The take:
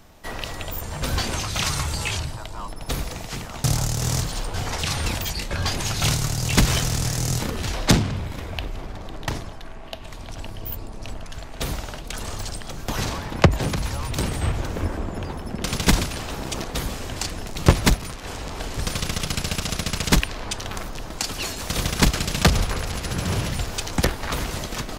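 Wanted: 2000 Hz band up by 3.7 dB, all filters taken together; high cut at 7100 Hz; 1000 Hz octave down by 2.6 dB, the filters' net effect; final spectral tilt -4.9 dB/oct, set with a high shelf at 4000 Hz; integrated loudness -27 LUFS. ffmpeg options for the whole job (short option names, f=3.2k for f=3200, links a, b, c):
-af "lowpass=7.1k,equalizer=f=1k:t=o:g=-5,equalizer=f=2k:t=o:g=8,highshelf=f=4k:g=-8.5,volume=-1dB"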